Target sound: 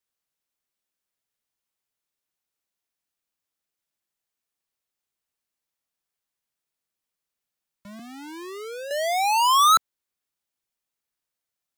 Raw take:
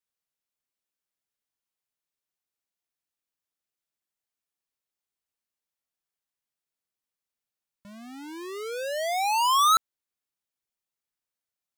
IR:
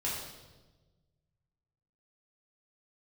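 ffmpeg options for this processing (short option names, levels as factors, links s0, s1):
-filter_complex "[0:a]asettb=1/sr,asplit=3[s0][s1][s2];[s0]atrim=end=7.994[s3];[s1]atrim=start=7.99:end=8.91,asetpts=PTS-STARTPTS,afade=t=in:d=0.004:c=qsin,afade=t=out:st=0.916:d=0.004:c=qsin,acrossover=split=460|1100[s4][s5][s6];[s4]acompressor=threshold=0.00562:ratio=4[s7];[s5]acompressor=threshold=0.00631:ratio=4[s8];[s6]acompressor=threshold=0.00562:ratio=4[s9];[s7][s8][s9]amix=inputs=3:normalize=0[s10];[s2]atrim=start=8.906[s11];[s3][s10]acrossfade=d=0.004:c1=hsin:c2=qsin[s12];[s12][s11]acrossfade=d=0.004:c1=qsin:c2=hsin,acrossover=split=280|1300[s13][s14][s15];[s13]acrusher=bits=3:mode=log:mix=0:aa=0.000001[s16];[s16][s14][s15]amix=inputs=3:normalize=0,volume=1.5"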